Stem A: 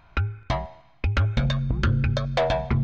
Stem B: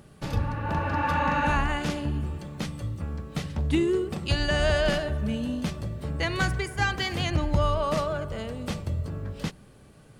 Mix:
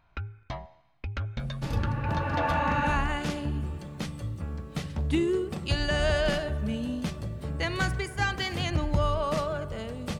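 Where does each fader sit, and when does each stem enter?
-11.0 dB, -2.0 dB; 0.00 s, 1.40 s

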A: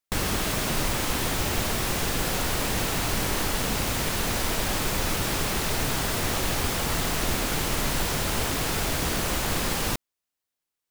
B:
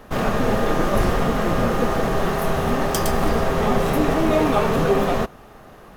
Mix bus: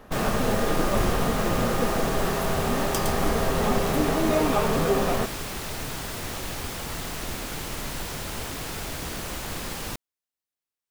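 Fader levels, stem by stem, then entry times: -6.5 dB, -4.5 dB; 0.00 s, 0.00 s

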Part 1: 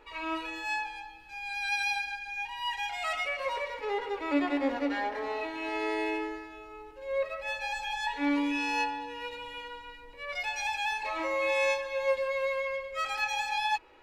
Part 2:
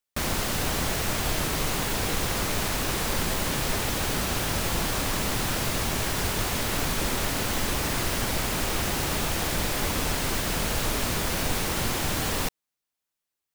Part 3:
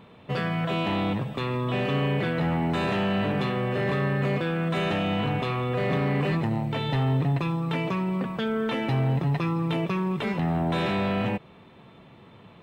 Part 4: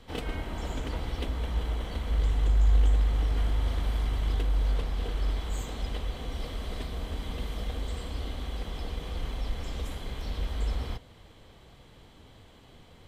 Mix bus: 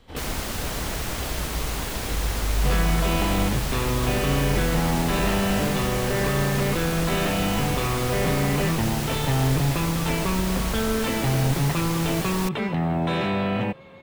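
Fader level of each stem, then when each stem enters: -19.0 dB, -3.0 dB, +1.5 dB, -1.5 dB; 1.50 s, 0.00 s, 2.35 s, 0.00 s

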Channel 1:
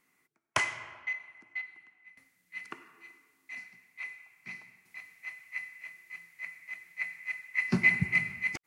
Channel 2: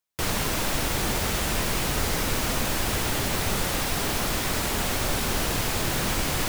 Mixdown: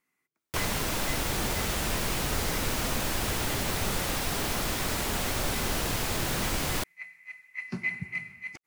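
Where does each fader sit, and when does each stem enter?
-7.5 dB, -3.5 dB; 0.00 s, 0.35 s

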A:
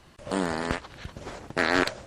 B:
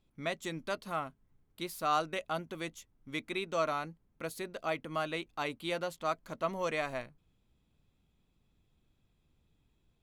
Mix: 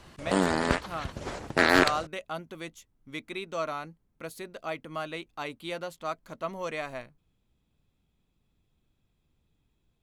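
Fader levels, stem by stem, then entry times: +2.5 dB, -0.5 dB; 0.00 s, 0.00 s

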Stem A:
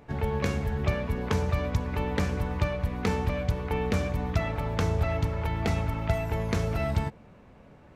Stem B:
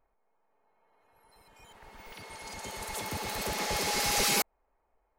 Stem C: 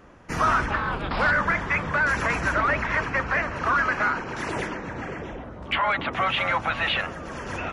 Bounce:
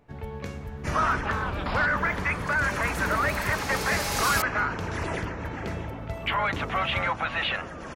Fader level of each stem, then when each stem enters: -8.0 dB, -2.0 dB, -3.0 dB; 0.00 s, 0.00 s, 0.55 s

